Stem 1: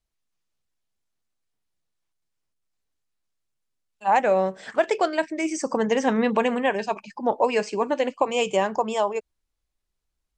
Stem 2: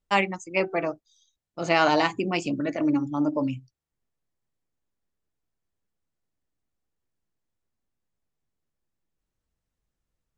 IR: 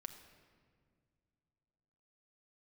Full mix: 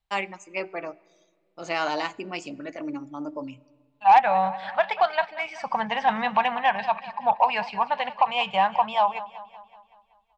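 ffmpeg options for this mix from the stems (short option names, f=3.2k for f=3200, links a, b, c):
-filter_complex "[0:a]firequalizer=gain_entry='entry(170,0);entry(320,-30);entry(770,5);entry(1300,-2);entry(3900,-1);entry(6600,-28)':delay=0.05:min_phase=1,volume=1.5dB,asplit=2[a][b];[b]volume=-16.5dB[c];[1:a]lowshelf=f=140:g=-11,volume=-8.5dB,asplit=2[d][e];[e]volume=-9dB[f];[2:a]atrim=start_sample=2205[g];[f][g]afir=irnorm=-1:irlink=0[h];[c]aecho=0:1:189|378|567|756|945|1134|1323|1512:1|0.54|0.292|0.157|0.085|0.0459|0.0248|0.0134[i];[a][d][h][i]amix=inputs=4:normalize=0,lowshelf=f=370:g=-4.5,aeval=exprs='0.501*(cos(1*acos(clip(val(0)/0.501,-1,1)))-cos(1*PI/2))+0.0447*(cos(5*acos(clip(val(0)/0.501,-1,1)))-cos(5*PI/2))+0.00891*(cos(7*acos(clip(val(0)/0.501,-1,1)))-cos(7*PI/2))':c=same"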